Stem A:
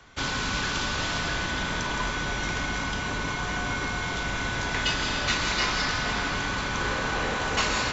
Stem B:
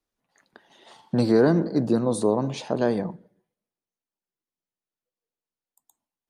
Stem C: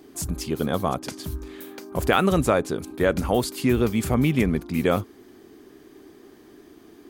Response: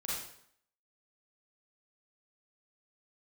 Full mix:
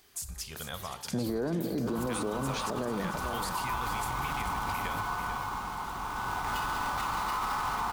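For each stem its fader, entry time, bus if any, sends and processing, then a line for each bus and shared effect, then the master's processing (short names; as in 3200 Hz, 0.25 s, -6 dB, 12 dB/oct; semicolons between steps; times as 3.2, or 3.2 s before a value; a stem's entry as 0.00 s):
-14.5 dB, 1.70 s, send -12 dB, echo send -9 dB, half-waves squared off; band shelf 1000 Hz +14.5 dB 1 oct; auto duck -10 dB, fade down 1.05 s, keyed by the second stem
+1.0 dB, 0.00 s, no send, echo send -13.5 dB, compressor 3:1, threshold -24 dBFS, peak gain reduction 8 dB
0.0 dB, 0.00 s, send -14 dB, echo send -9.5 dB, passive tone stack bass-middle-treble 10-0-10; compressor, threshold -36 dBFS, peak gain reduction 13.5 dB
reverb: on, RT60 0.65 s, pre-delay 33 ms
echo: echo 0.443 s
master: limiter -23.5 dBFS, peak gain reduction 11 dB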